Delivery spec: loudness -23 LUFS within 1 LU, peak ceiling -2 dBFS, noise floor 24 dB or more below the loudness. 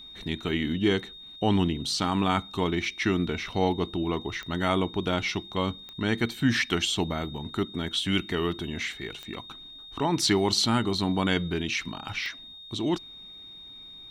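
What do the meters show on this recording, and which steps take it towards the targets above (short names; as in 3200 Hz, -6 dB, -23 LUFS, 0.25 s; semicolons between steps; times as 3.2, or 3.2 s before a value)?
clicks 4; steady tone 3700 Hz; tone level -43 dBFS; loudness -27.5 LUFS; peak -10.0 dBFS; loudness target -23.0 LUFS
-> de-click; notch 3700 Hz, Q 30; gain +4.5 dB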